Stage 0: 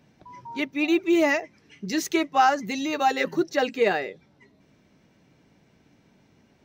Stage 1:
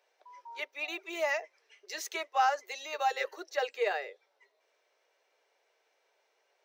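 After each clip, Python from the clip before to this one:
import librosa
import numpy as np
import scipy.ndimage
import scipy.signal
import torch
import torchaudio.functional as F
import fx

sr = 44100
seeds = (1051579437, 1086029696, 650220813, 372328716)

y = scipy.signal.sosfilt(scipy.signal.butter(8, 440.0, 'highpass', fs=sr, output='sos'), x)
y = y * 10.0 ** (-7.5 / 20.0)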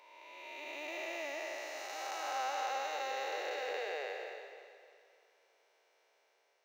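y = fx.spec_blur(x, sr, span_ms=768.0)
y = fx.echo_feedback(y, sr, ms=305, feedback_pct=44, wet_db=-13.5)
y = y * 10.0 ** (3.0 / 20.0)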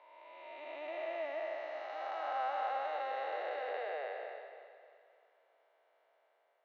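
y = fx.cabinet(x, sr, low_hz=230.0, low_slope=12, high_hz=3100.0, hz=(400.0, 660.0, 1200.0, 2500.0), db=(-5, 8, 3, -8))
y = y * 10.0 ** (-1.5 / 20.0)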